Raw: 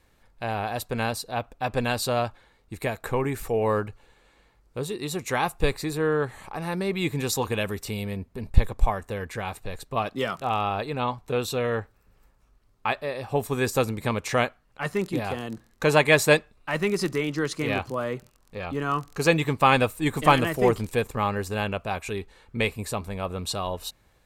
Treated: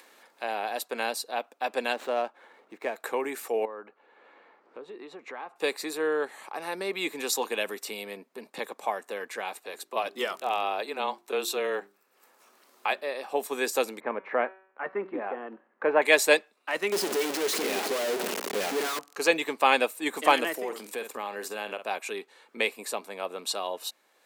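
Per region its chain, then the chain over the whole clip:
1.93–2.96 s: median filter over 9 samples + treble shelf 3.5 kHz -11 dB + upward compressor, threshold -39 dBFS
3.65–5.56 s: low-pass 1.8 kHz + compression, threshold -34 dBFS
9.60–13.01 s: treble shelf 8.7 kHz +5 dB + frequency shift -22 Hz + hum notches 50/100/150/200/250/300/350/400 Hz
14.00–16.02 s: low-pass 1.8 kHz 24 dB/octave + de-hum 190.1 Hz, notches 34
16.92–18.99 s: one-bit comparator + small resonant body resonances 200/400 Hz, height 9 dB, ringing for 30 ms
20.52–21.87 s: treble shelf 11 kHz +5 dB + doubling 48 ms -13 dB + compression 5:1, threshold -26 dBFS
whole clip: Bessel high-pass 430 Hz, order 8; dynamic bell 1.2 kHz, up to -5 dB, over -40 dBFS, Q 2.7; upward compressor, threshold -46 dBFS

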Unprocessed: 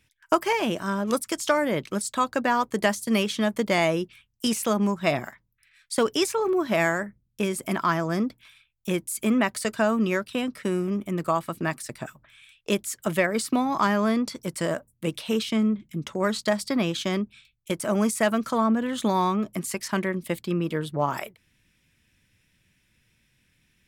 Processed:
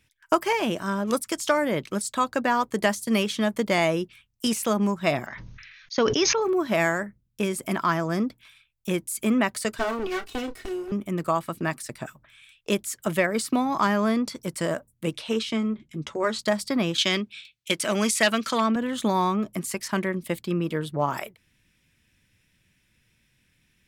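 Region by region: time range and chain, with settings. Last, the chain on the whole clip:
5.26–6.42 s: brick-wall FIR low-pass 6.7 kHz + decay stretcher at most 27 dB/s
9.78–10.92 s: comb filter that takes the minimum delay 2.7 ms + doubling 30 ms -11.5 dB
15.13–16.39 s: low-pass 8.1 kHz + peaking EQ 190 Hz -14.5 dB 0.24 oct + doubling 13 ms -11.5 dB
16.98–18.76 s: overload inside the chain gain 14 dB + frequency weighting D
whole clip: none

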